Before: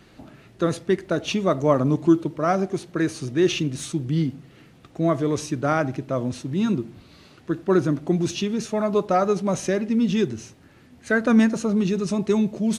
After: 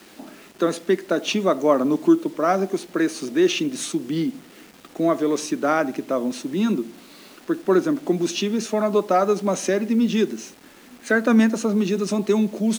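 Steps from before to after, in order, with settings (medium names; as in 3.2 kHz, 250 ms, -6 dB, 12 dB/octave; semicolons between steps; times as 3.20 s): steep high-pass 200 Hz 36 dB/octave; in parallel at -2 dB: compression 6:1, threshold -28 dBFS, peak gain reduction 15 dB; on the sum: word length cut 8-bit, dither none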